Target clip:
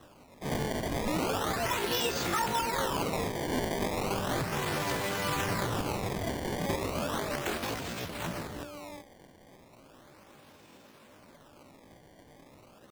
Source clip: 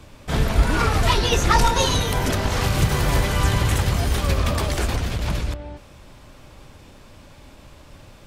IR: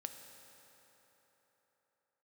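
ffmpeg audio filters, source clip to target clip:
-af "highpass=200,alimiter=limit=0.188:level=0:latency=1:release=114,atempo=0.64,acrusher=samples=19:mix=1:aa=0.000001:lfo=1:lforange=30.4:lforate=0.35,volume=0.531"

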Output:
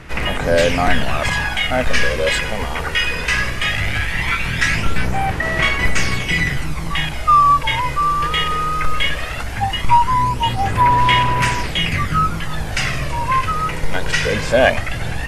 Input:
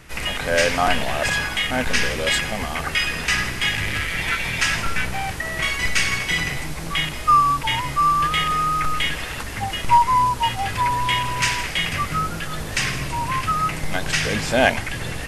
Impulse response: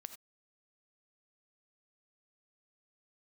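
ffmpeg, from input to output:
-filter_complex "[0:a]asplit=2[s0][s1];[s1]asoftclip=type=hard:threshold=0.211,volume=0.398[s2];[s0][s2]amix=inputs=2:normalize=0,aphaser=in_gain=1:out_gain=1:delay=2.1:decay=0.45:speed=0.18:type=sinusoidal,highshelf=f=3700:g=-8,volume=1.12"

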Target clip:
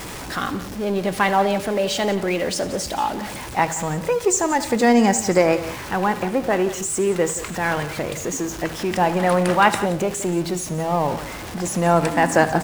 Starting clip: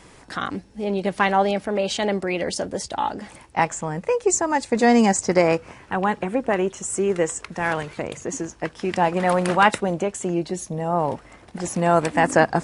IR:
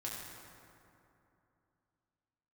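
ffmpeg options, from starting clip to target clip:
-filter_complex "[0:a]aeval=exprs='val(0)+0.5*0.0376*sgn(val(0))':c=same,aecho=1:1:76|176:0.126|0.168,asplit=2[s0][s1];[1:a]atrim=start_sample=2205,atrim=end_sample=6174[s2];[s1][s2]afir=irnorm=-1:irlink=0,volume=0.316[s3];[s0][s3]amix=inputs=2:normalize=0,volume=0.841"

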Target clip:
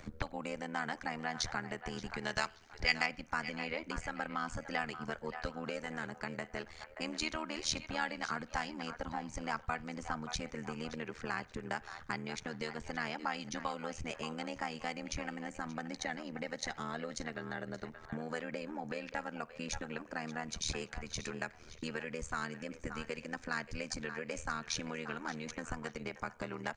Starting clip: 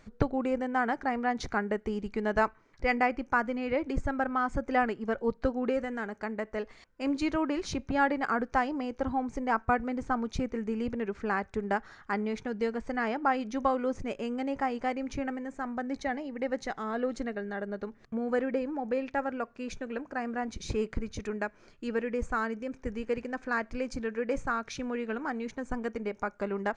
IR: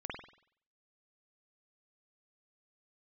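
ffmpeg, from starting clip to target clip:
-filter_complex "[0:a]asettb=1/sr,asplit=3[s0][s1][s2];[s0]atrim=end=2.214[s3];[s1]atrim=start=2.21:end=3.06,asetpts=PTS-STARTPTS,afade=t=in:d=0.004:c=qsin,afade=t=out:st=0.846:d=0.004:c=qsin,equalizer=f=4700:w=0.6:g=7.5[s4];[s2]atrim=start=3.056[s5];[s3][s4]acrossfade=d=0.004:c1=hsin:c2=qsin[s6];[s6][s5]acrossfade=d=0.004:c1=qsin:c2=hsin,acrossover=split=620[s7][s8];[s7]acompressor=threshold=0.00631:ratio=12[s9];[s8]asplit=2[s10][s11];[s11]adelay=577,lowpass=f=4400:p=1,volume=0.237,asplit=2[s12][s13];[s13]adelay=577,lowpass=f=4400:p=1,volume=0.31,asplit=2[s14][s15];[s15]adelay=577,lowpass=f=4400:p=1,volume=0.31[s16];[s10][s12][s14][s16]amix=inputs=4:normalize=0[s17];[s9][s17]amix=inputs=2:normalize=0,tremolo=f=79:d=0.889,acrossover=split=230|3000[s18][s19][s20];[s19]acompressor=threshold=0.00112:ratio=2[s21];[s18][s21][s20]amix=inputs=3:normalize=0,asplit=2[s22][s23];[1:a]atrim=start_sample=2205[s24];[s23][s24]afir=irnorm=-1:irlink=0,volume=0.075[s25];[s22][s25]amix=inputs=2:normalize=0,volume=2.99"

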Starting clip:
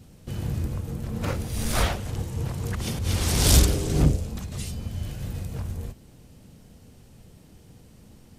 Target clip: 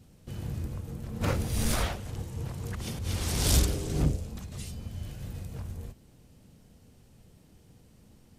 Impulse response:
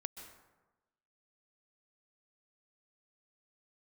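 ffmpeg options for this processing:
-filter_complex "[0:a]asplit=3[s0][s1][s2];[s0]afade=t=out:st=1.2:d=0.02[s3];[s1]acontrast=64,afade=t=in:st=1.2:d=0.02,afade=t=out:st=1.74:d=0.02[s4];[s2]afade=t=in:st=1.74:d=0.02[s5];[s3][s4][s5]amix=inputs=3:normalize=0,volume=0.473"

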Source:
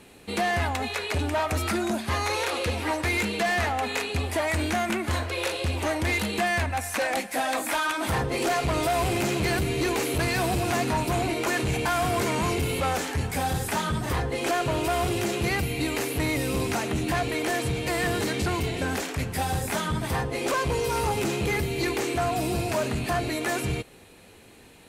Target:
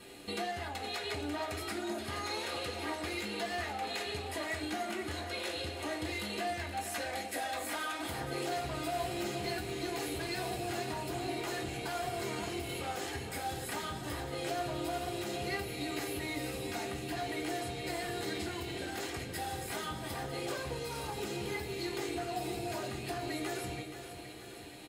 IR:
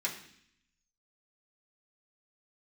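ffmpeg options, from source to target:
-filter_complex "[0:a]acompressor=threshold=0.0158:ratio=6,aecho=1:1:474|948|1422|1896|2370|2844|3318:0.299|0.176|0.104|0.0613|0.0362|0.0213|0.0126[s0];[1:a]atrim=start_sample=2205,asetrate=88200,aresample=44100[s1];[s0][s1]afir=irnorm=-1:irlink=0,volume=1.41"

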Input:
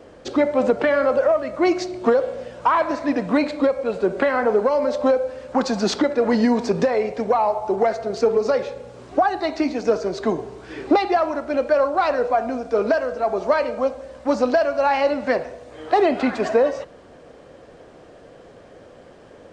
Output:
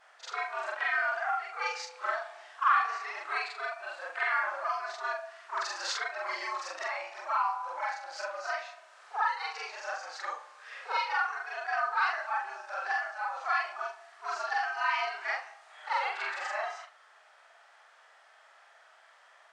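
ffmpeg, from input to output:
-af "afftfilt=real='re':imag='-im':win_size=4096:overlap=0.75,highpass=f=1200:t=q:w=1.7,afreqshift=140,volume=0.708"

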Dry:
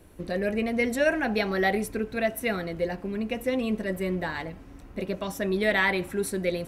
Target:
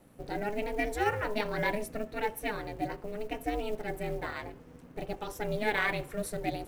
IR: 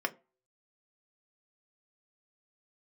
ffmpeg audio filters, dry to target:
-filter_complex "[0:a]aeval=exprs='val(0)*sin(2*PI*210*n/s)':c=same,asplit=2[s0][s1];[1:a]atrim=start_sample=2205,lowpass=3300[s2];[s1][s2]afir=irnorm=-1:irlink=0,volume=0.0596[s3];[s0][s3]amix=inputs=2:normalize=0,acrusher=bits=7:mode=log:mix=0:aa=0.000001,volume=0.668"

